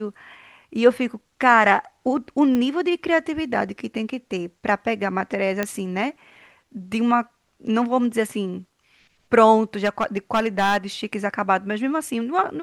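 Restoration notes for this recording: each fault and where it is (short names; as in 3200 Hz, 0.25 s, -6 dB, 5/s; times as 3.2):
2.55 pop -12 dBFS
5.63 pop -9 dBFS
9.84–10.77 clipped -14.5 dBFS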